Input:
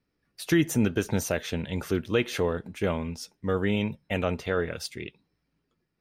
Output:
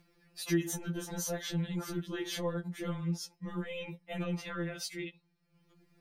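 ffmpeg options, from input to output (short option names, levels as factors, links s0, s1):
-filter_complex "[0:a]asettb=1/sr,asplit=3[s0][s1][s2];[s0]atrim=end=0.684[s3];[s1]atrim=start=0.68:end=3.3,asetpts=PTS-STARTPTS,afade=t=in:d=0.004:c=qsin,afade=t=out:st=2.616:d=0.004:c=qsin,equalizer=f=2500:w=4.8:g=-9[s4];[s2]atrim=start=3.296[s5];[s3][s4]acrossfade=d=0.004:c1=hsin:c2=qsin[s6];[s6][s5]acrossfade=d=0.004:c1=qsin:c2=hsin,alimiter=limit=0.0631:level=0:latency=1:release=12,acompressor=mode=upward:threshold=0.00224:ratio=2.5,afftfilt=real='re*2.83*eq(mod(b,8),0)':imag='im*2.83*eq(mod(b,8),0)':win_size=2048:overlap=0.75"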